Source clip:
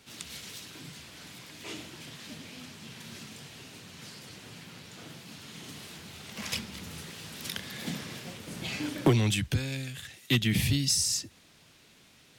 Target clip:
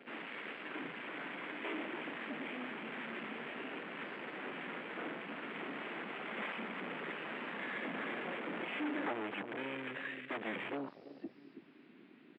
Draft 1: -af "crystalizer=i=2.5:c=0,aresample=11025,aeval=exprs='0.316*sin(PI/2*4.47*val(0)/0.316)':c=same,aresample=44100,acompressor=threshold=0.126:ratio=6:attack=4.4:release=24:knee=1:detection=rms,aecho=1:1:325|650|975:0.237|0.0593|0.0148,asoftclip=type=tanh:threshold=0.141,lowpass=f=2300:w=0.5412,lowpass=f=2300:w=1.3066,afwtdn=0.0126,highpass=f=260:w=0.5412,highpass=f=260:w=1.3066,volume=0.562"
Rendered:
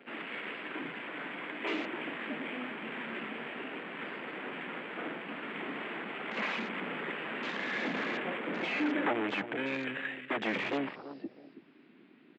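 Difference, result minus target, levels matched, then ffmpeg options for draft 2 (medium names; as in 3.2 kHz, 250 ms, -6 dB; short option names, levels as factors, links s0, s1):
saturation: distortion -10 dB
-af "crystalizer=i=2.5:c=0,aresample=11025,aeval=exprs='0.316*sin(PI/2*4.47*val(0)/0.316)':c=same,aresample=44100,acompressor=threshold=0.126:ratio=6:attack=4.4:release=24:knee=1:detection=rms,aecho=1:1:325|650|975:0.237|0.0593|0.0148,asoftclip=type=tanh:threshold=0.0422,lowpass=f=2300:w=0.5412,lowpass=f=2300:w=1.3066,afwtdn=0.0126,highpass=f=260:w=0.5412,highpass=f=260:w=1.3066,volume=0.562"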